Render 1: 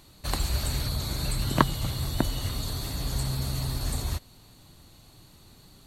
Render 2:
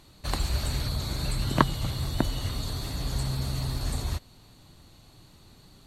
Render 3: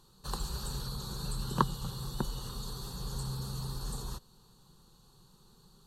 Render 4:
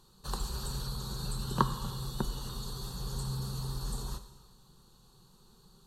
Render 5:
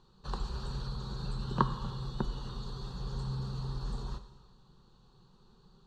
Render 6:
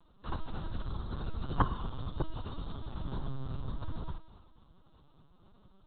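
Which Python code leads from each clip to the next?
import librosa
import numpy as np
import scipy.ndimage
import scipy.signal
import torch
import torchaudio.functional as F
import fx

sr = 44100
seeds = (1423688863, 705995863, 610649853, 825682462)

y1 = fx.high_shelf(x, sr, hz=10000.0, db=-9.5)
y2 = fx.fixed_phaser(y1, sr, hz=430.0, stages=8)
y2 = y2 * librosa.db_to_amplitude(-4.0)
y3 = fx.rev_gated(y2, sr, seeds[0], gate_ms=440, shape='falling', drr_db=10.0)
y4 = fx.air_absorb(y3, sr, metres=170.0)
y5 = fx.lpc_vocoder(y4, sr, seeds[1], excitation='pitch_kept', order=10)
y5 = y5 * librosa.db_to_amplitude(1.0)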